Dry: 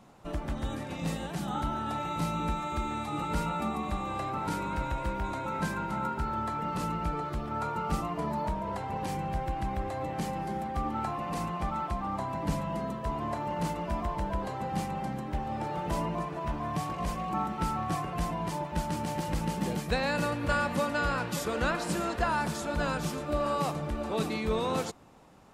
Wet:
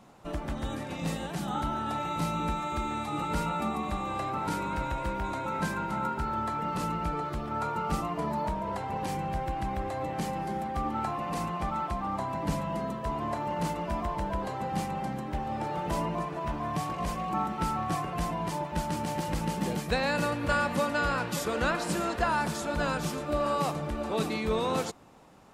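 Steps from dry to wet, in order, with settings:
low-shelf EQ 130 Hz −3.5 dB
level +1.5 dB

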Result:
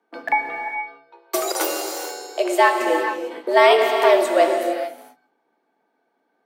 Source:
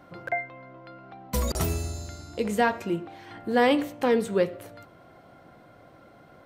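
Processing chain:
noise gate −42 dBFS, range −27 dB
0:00.74–0:02.79: elliptic high-pass filter 180 Hz, stop band 40 dB
dynamic equaliser 250 Hz, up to −3 dB, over −34 dBFS, Q 0.86
frequency shifter +150 Hz
reverb whose tail is shaped and stops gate 480 ms flat, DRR 3.5 dB
level +8 dB

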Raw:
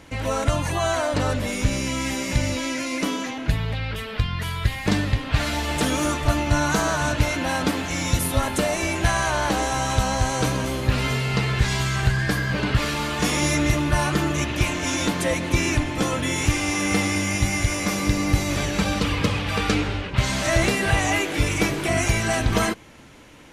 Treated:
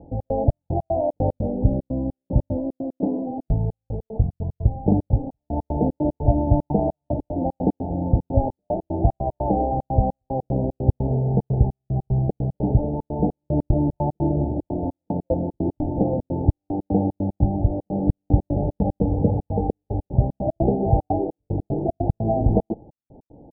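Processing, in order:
Chebyshev low-pass filter 860 Hz, order 8
gate pattern "xx.xx..x.xx.x.xx" 150 BPM −60 dB
level +4 dB

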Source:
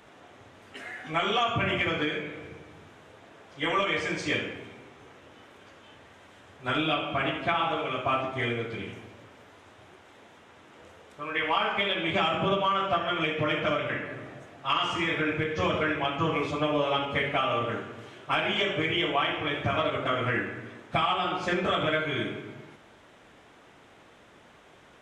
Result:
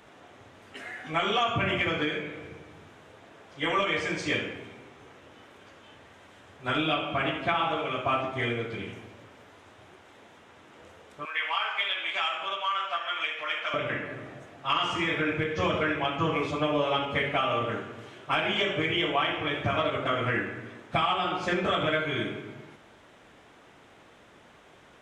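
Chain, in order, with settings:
0:11.25–0:13.74: high-pass filter 1,100 Hz 12 dB per octave

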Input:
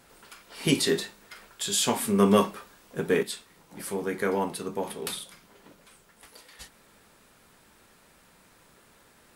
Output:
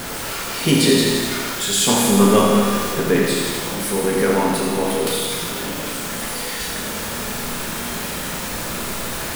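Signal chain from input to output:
converter with a step at zero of −28 dBFS
low-shelf EQ 330 Hz +3 dB
four-comb reverb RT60 1.5 s, combs from 26 ms, DRR 0.5 dB
feedback echo at a low word length 84 ms, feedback 80%, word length 6 bits, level −6.5 dB
level +3 dB

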